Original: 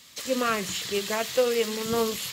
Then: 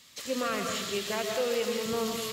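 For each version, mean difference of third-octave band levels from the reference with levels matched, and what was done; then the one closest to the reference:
3.0 dB: brickwall limiter −17 dBFS, peak gain reduction 6.5 dB
high-shelf EQ 12,000 Hz −4 dB
comb and all-pass reverb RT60 1.2 s, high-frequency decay 0.8×, pre-delay 90 ms, DRR 3 dB
level −4 dB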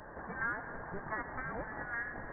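20.0 dB: Butterworth high-pass 900 Hz 48 dB per octave
downward compressor 8 to 1, threshold −44 dBFS, peak gain reduction 21 dB
on a send: delay with a low-pass on its return 111 ms, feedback 80%, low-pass 1,300 Hz, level −11.5 dB
on the sum: voice inversion scrambler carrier 2,800 Hz
level +10.5 dB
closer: first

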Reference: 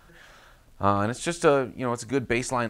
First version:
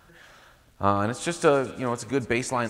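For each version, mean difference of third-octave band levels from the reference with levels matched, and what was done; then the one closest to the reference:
1.5 dB: high-pass filter 46 Hz
delay with a high-pass on its return 223 ms, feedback 55%, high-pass 2,300 Hz, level −15 dB
spring reverb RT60 2.4 s, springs 38/46/56 ms, chirp 60 ms, DRR 19.5 dB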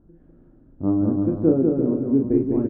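14.5 dB: low-pass with resonance 300 Hz, resonance Q 3.5
double-tracking delay 37 ms −5 dB
bouncing-ball delay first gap 200 ms, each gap 0.7×, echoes 5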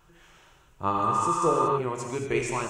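6.0 dB: EQ curve with evenly spaced ripples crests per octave 0.71, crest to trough 7 dB
reverb whose tail is shaped and stops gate 260 ms flat, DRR 0.5 dB
healed spectral selection 0:00.96–0:01.75, 840–4,500 Hz before
level −6.5 dB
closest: first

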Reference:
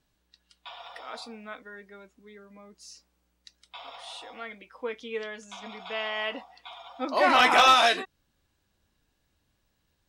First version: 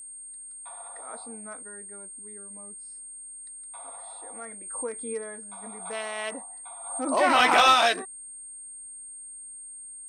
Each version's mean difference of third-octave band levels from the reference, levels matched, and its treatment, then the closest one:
4.5 dB: adaptive Wiener filter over 15 samples
steady tone 8,600 Hz −40 dBFS
background raised ahead of every attack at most 57 dB per second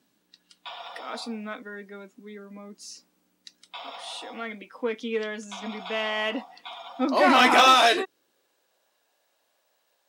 2.5 dB: high-shelf EQ 8,000 Hz +4.5 dB
in parallel at −5 dB: soft clipping −29 dBFS, distortion −3 dB
on the sum: high-pass filter sweep 230 Hz → 600 Hz, 0:07.41–0:08.86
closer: second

